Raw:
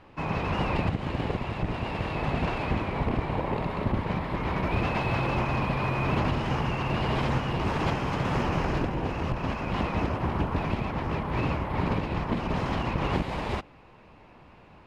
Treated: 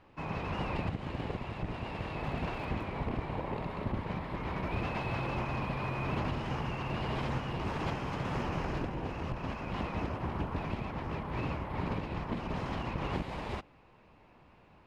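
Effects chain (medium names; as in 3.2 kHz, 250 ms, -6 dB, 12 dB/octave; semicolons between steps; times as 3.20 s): 2.20–2.84 s: crackle 120 per s -> 50 per s -41 dBFS; trim -7.5 dB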